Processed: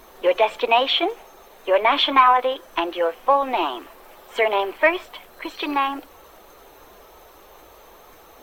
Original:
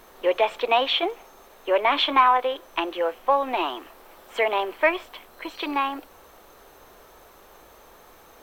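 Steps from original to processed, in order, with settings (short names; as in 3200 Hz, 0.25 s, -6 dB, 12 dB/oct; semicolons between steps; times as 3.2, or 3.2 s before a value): bin magnitudes rounded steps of 15 dB; gain +3.5 dB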